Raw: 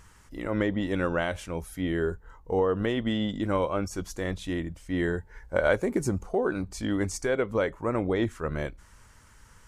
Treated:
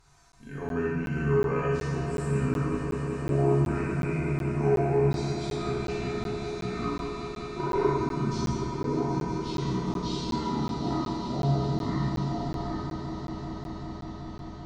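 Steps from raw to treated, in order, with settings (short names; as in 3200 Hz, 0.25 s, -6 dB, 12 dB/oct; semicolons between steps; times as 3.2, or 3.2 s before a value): speed glide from 81% -> 51%; resonator 140 Hz, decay 0.46 s, harmonics odd, mix 90%; on a send: swelling echo 0.193 s, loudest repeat 5, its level -11.5 dB; on the sum: Schroeder reverb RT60 1.4 s, combs from 28 ms, DRR -4.5 dB; crackling interface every 0.37 s, samples 512, zero, from 0.32; gain +7 dB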